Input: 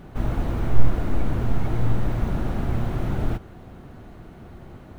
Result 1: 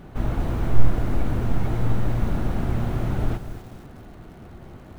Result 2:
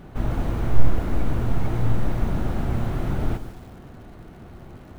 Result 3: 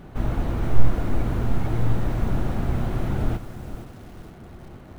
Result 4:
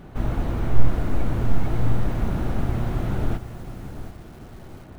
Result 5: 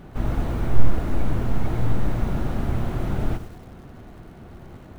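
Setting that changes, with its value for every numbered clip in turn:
feedback echo at a low word length, delay time: 239, 148, 467, 734, 99 milliseconds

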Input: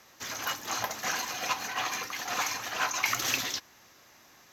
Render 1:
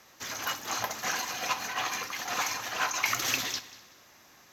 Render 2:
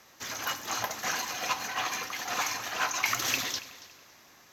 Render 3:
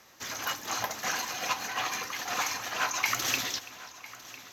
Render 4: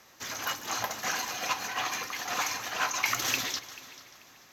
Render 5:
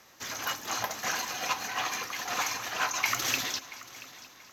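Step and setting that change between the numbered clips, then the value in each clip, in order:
echo machine with several playback heads, delay time: 63, 93, 334, 146, 227 milliseconds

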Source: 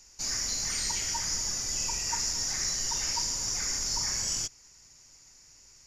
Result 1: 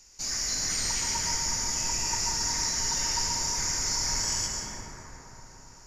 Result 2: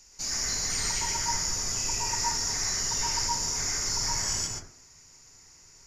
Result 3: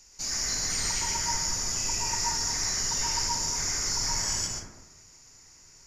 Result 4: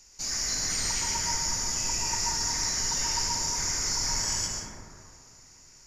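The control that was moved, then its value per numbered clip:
dense smooth reverb, RT60: 5.1, 0.52, 1.1, 2.4 seconds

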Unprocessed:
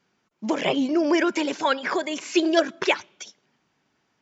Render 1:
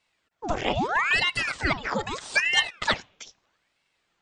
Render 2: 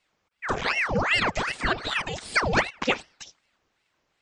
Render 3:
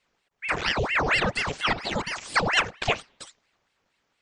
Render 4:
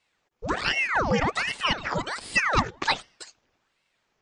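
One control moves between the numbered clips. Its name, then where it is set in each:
ring modulator whose carrier an LFO sweeps, at: 0.78, 2.6, 4.3, 1.3 Hertz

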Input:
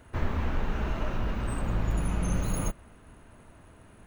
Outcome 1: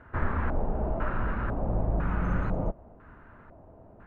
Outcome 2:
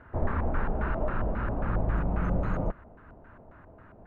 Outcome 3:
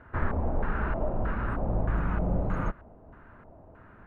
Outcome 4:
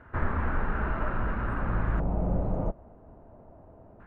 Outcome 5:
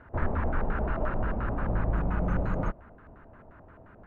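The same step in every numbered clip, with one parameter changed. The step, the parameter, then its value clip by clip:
auto-filter low-pass, speed: 1, 3.7, 1.6, 0.25, 5.7 Hertz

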